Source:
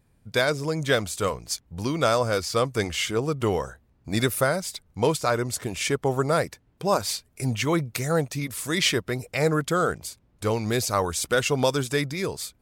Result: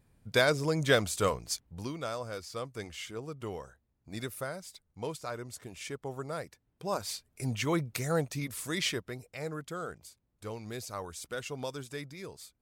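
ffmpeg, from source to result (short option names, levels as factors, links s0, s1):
-af "volume=2.11,afade=t=out:st=1.31:d=0.71:silence=0.237137,afade=t=in:st=6.46:d=1.27:silence=0.354813,afade=t=out:st=8.48:d=0.82:silence=0.334965"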